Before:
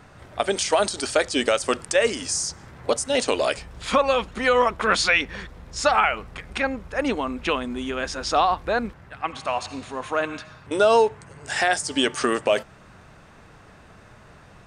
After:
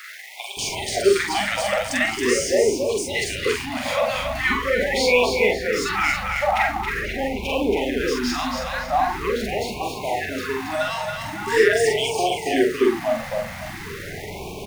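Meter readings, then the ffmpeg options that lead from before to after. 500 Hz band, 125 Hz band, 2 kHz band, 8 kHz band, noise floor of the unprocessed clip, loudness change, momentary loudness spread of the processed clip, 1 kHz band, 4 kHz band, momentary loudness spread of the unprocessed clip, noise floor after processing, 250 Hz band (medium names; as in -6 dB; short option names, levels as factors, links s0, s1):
+2.0 dB, +5.0 dB, +3.0 dB, 0.0 dB, -49 dBFS, +1.0 dB, 10 LU, -0.5 dB, +1.0 dB, 13 LU, -34 dBFS, +3.0 dB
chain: -filter_complex "[0:a]aeval=exprs='val(0)+0.5*0.0355*sgn(val(0))':c=same,asplit=2[s0][s1];[s1]adelay=45,volume=0.708[s2];[s0][s2]amix=inputs=2:normalize=0,acrossover=split=1100[s3][s4];[s3]adelay=570[s5];[s5][s4]amix=inputs=2:normalize=0,flanger=delay=6.6:depth=4.8:regen=-70:speed=1:shape=triangular,equalizer=f=400:t=o:w=0.33:g=12,equalizer=f=800:t=o:w=0.33:g=6,equalizer=f=2000:t=o:w=0.33:g=10,equalizer=f=8000:t=o:w=0.33:g=-4,asplit=2[s6][s7];[s7]aecho=0:1:276|552|828|1104:0.562|0.197|0.0689|0.0241[s8];[s6][s8]amix=inputs=2:normalize=0,afftfilt=real='re*(1-between(b*sr/1024,340*pow(1600/340,0.5+0.5*sin(2*PI*0.43*pts/sr))/1.41,340*pow(1600/340,0.5+0.5*sin(2*PI*0.43*pts/sr))*1.41))':imag='im*(1-between(b*sr/1024,340*pow(1600/340,0.5+0.5*sin(2*PI*0.43*pts/sr))/1.41,340*pow(1600/340,0.5+0.5*sin(2*PI*0.43*pts/sr))*1.41))':win_size=1024:overlap=0.75"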